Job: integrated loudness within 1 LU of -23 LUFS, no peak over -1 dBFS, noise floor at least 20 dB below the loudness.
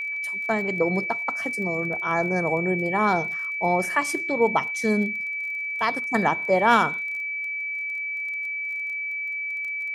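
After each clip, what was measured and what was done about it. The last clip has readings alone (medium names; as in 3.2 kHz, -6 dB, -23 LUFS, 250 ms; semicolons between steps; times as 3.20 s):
tick rate 22 per s; steady tone 2.3 kHz; tone level -27 dBFS; loudness -24.0 LUFS; peak level -6.0 dBFS; loudness target -23.0 LUFS
-> de-click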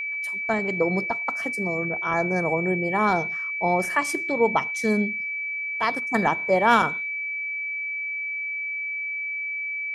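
tick rate 0 per s; steady tone 2.3 kHz; tone level -27 dBFS
-> band-stop 2.3 kHz, Q 30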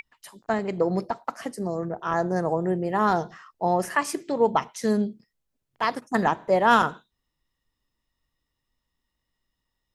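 steady tone not found; loudness -25.0 LUFS; peak level -7.0 dBFS; loudness target -23.0 LUFS
-> trim +2 dB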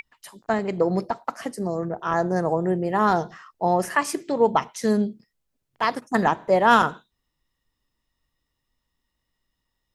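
loudness -23.0 LUFS; peak level -5.0 dBFS; noise floor -79 dBFS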